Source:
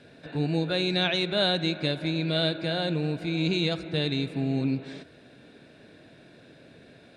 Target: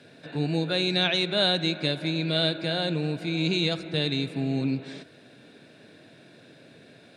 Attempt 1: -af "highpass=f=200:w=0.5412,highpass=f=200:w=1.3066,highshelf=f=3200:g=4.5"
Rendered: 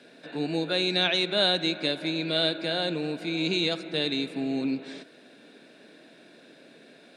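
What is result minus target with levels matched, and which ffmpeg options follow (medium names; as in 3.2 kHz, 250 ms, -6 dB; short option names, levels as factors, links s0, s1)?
125 Hz band -8.0 dB
-af "highpass=f=98:w=0.5412,highpass=f=98:w=1.3066,highshelf=f=3200:g=4.5"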